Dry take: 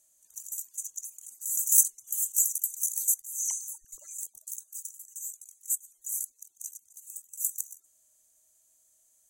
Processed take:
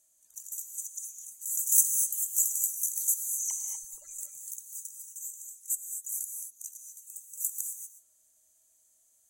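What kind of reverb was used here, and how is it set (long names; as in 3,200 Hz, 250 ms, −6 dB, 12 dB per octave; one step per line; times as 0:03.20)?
reverb whose tail is shaped and stops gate 270 ms rising, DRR 4 dB
level −2 dB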